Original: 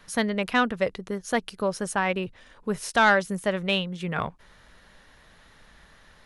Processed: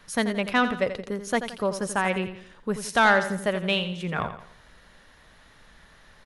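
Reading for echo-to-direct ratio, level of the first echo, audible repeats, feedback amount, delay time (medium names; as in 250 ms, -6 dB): -9.5 dB, -10.5 dB, 4, 41%, 85 ms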